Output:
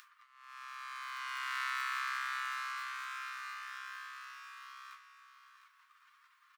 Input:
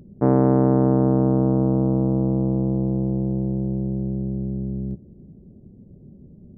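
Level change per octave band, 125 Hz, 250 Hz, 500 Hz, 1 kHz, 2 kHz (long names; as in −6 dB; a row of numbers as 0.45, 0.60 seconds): below −40 dB, below −40 dB, below −40 dB, −7.5 dB, can't be measured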